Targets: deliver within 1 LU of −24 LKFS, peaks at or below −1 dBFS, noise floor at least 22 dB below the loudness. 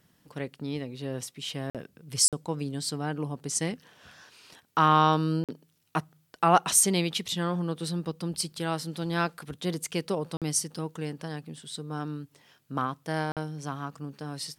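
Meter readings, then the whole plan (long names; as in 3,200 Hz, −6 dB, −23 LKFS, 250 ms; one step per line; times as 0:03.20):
number of dropouts 5; longest dropout 47 ms; integrated loudness −29.0 LKFS; sample peak −7.0 dBFS; target loudness −24.0 LKFS
→ repair the gap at 0:01.70/0:02.28/0:05.44/0:10.37/0:13.32, 47 ms
level +5 dB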